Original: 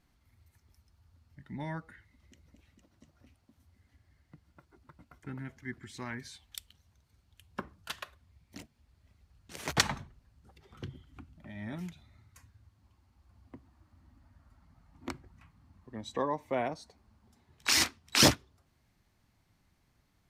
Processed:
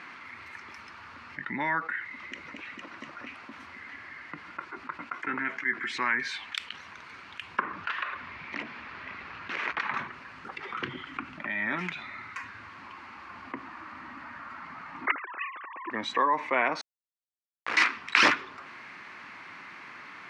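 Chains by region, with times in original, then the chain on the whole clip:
5.13–5.92 s: high-pass 150 Hz + doubling 18 ms -13 dB
7.60–9.94 s: companding laws mixed up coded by mu + compression 3:1, threshold -48 dBFS + distance through air 130 m
15.07–15.91 s: formants replaced by sine waves + tilt EQ +4.5 dB/octave
16.81–17.77 s: compression 4:1, threshold -32 dBFS + Schmitt trigger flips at -30.5 dBFS
whole clip: Chebyshev band-pass 310–4100 Hz, order 2; high-order bell 1.6 kHz +13.5 dB; level flattener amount 50%; trim -4 dB

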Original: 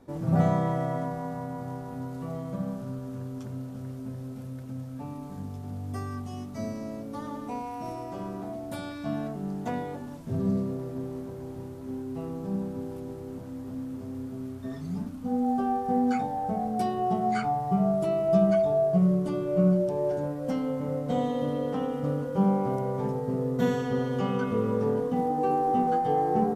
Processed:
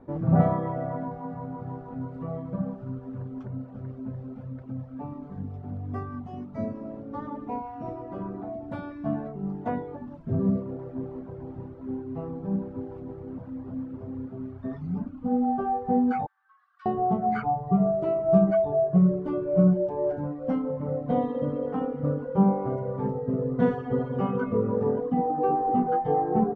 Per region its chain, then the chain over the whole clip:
16.26–16.86 s: rippled Chebyshev high-pass 1.1 kHz, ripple 6 dB + tilt EQ -3 dB/octave
whole clip: reverb removal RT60 1.1 s; low-pass 1.5 kHz 12 dB/octave; trim +4 dB

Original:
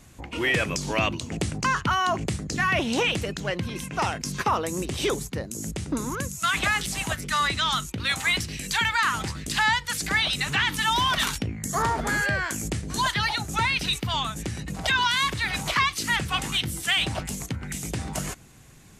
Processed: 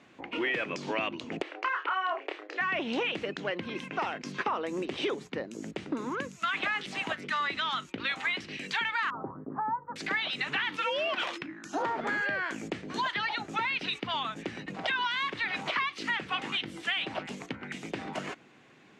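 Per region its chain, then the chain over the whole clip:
1.42–2.61 s: brick-wall FIR high-pass 280 Hz + three-band isolator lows -16 dB, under 430 Hz, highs -17 dB, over 3.6 kHz + doubling 29 ms -3.5 dB
9.10–9.96 s: steep low-pass 1.2 kHz 48 dB/octave + comb 7.4 ms, depth 31%
10.77–11.85 s: peaking EQ 130 Hz -14 dB 2.1 oct + frequency shift -390 Hz
whole clip: Chebyshev band-pass 290–2800 Hz, order 2; compression 3:1, threshold -29 dBFS

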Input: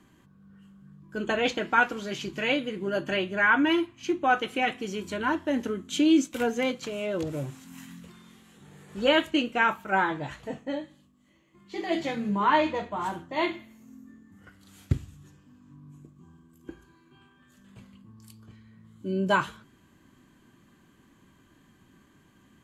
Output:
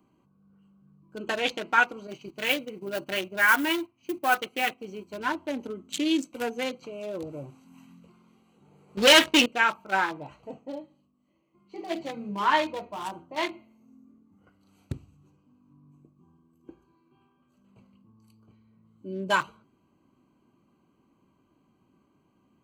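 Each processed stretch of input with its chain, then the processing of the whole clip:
2.07–5.20 s: block-companded coder 5-bit + gate -37 dBFS, range -8 dB
8.97–9.46 s: low-pass 4.8 kHz + waveshaping leveller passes 3
whole clip: local Wiener filter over 25 samples; tilt EQ +3 dB/octave

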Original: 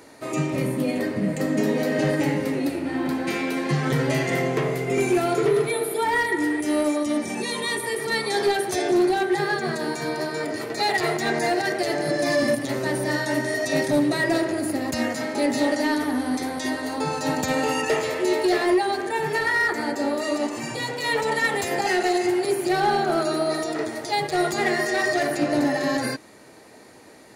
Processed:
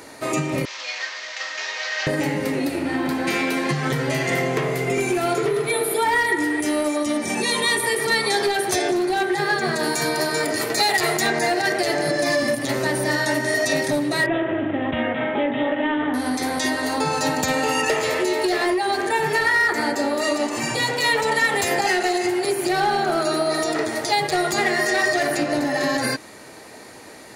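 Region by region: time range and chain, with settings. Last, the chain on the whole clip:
0.65–2.07 s: one-bit delta coder 32 kbps, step -32.5 dBFS + Bessel high-pass 1.4 kHz, order 4
9.83–11.27 s: treble shelf 7.1 kHz +10 dB + hard clipper -14 dBFS
14.26–16.14 s: distance through air 200 m + careless resampling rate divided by 6×, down none, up filtered + doubling 40 ms -12.5 dB
whole clip: bass shelf 160 Hz +6.5 dB; compression, threshold -23 dBFS; bass shelf 460 Hz -8 dB; trim +8.5 dB

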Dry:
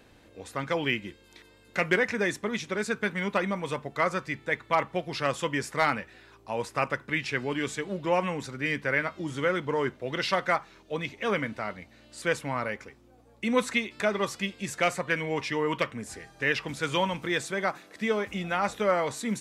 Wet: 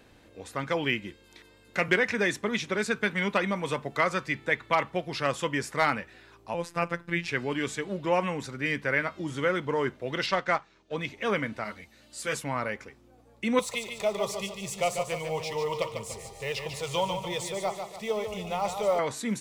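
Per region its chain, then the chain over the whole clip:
1.88–4.90 s: dynamic bell 3.2 kHz, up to +4 dB, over -38 dBFS, Q 0.9 + three bands compressed up and down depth 40%
6.54–7.28 s: bass shelf 270 Hz +6.5 dB + robot voice 171 Hz
10.26–10.97 s: companding laws mixed up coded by A + low-pass 7.6 kHz 24 dB/octave
11.64–12.44 s: treble shelf 4.6 kHz +10.5 dB + three-phase chorus
13.59–18.99 s: companding laws mixed up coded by mu + static phaser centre 660 Hz, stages 4 + feedback delay 146 ms, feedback 44%, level -7 dB
whole clip: none

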